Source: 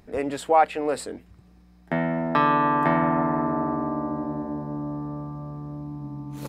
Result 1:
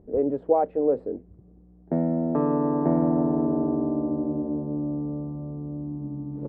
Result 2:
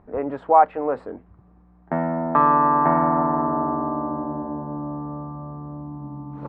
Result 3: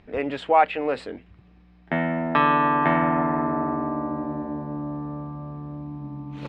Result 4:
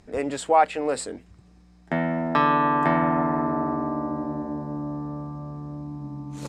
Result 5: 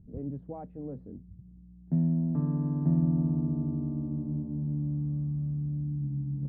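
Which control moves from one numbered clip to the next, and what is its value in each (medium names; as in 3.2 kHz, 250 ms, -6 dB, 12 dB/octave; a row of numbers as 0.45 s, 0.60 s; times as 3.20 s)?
resonant low-pass, frequency: 450 Hz, 1.1 kHz, 2.9 kHz, 7.7 kHz, 160 Hz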